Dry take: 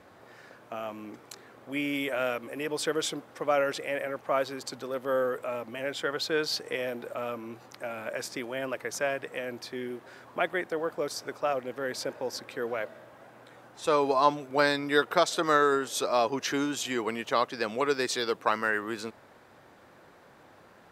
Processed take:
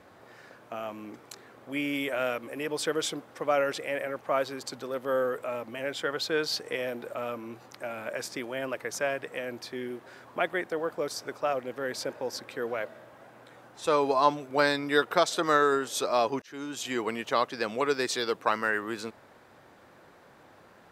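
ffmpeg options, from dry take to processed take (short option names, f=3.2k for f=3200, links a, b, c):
-filter_complex "[0:a]asplit=2[a][b];[a]atrim=end=16.42,asetpts=PTS-STARTPTS,afade=t=out:st=16.416:d=0.004:c=hsin[c];[b]atrim=start=16.42,asetpts=PTS-STARTPTS,afade=t=in:d=0.54[d];[c][d]concat=n=2:v=0:a=1"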